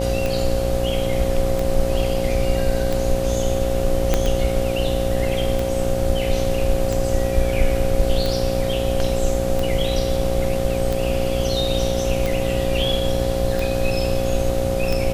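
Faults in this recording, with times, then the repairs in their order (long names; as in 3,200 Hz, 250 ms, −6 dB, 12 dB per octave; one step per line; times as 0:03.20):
mains buzz 60 Hz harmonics 13 −25 dBFS
scratch tick 45 rpm
whistle 540 Hz −24 dBFS
0:04.14: click −4 dBFS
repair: click removal
hum removal 60 Hz, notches 13
notch filter 540 Hz, Q 30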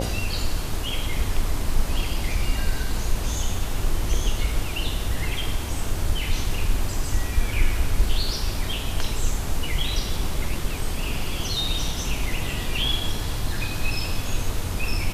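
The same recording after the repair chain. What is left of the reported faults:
0:04.14: click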